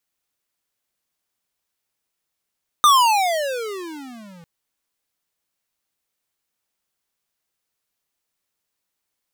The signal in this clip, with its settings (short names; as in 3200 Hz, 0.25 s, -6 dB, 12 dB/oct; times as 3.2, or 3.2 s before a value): gliding synth tone square, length 1.60 s, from 1230 Hz, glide -35 st, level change -33 dB, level -11 dB